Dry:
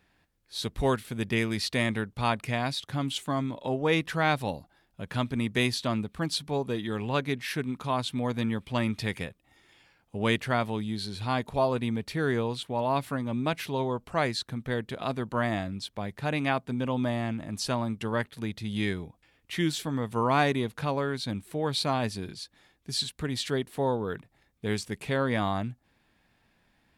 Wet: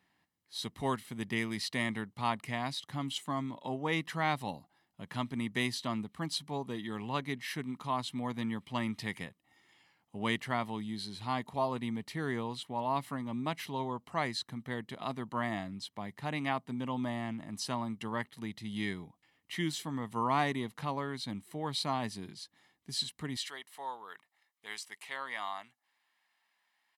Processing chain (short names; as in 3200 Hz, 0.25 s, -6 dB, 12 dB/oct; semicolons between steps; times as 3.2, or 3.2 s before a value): HPF 160 Hz 12 dB/oct, from 23.37 s 940 Hz; comb 1 ms, depth 46%; gain -6 dB